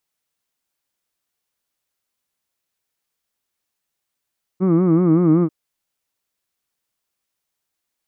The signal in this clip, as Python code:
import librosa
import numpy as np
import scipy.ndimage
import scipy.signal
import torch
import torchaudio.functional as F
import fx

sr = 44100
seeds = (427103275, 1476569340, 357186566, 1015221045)

y = fx.formant_vowel(sr, seeds[0], length_s=0.89, hz=178.0, glide_st=-1.5, vibrato_hz=5.3, vibrato_st=1.3, f1_hz=300.0, f2_hz=1200.0, f3_hz=2200.0)